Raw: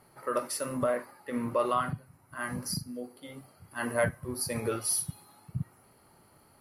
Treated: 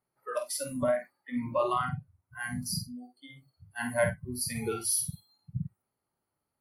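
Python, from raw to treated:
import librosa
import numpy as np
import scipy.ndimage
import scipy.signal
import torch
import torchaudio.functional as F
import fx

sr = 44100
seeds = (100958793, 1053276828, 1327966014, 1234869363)

y = fx.noise_reduce_blind(x, sr, reduce_db=25)
y = fx.doubler(y, sr, ms=49.0, db=-7.0)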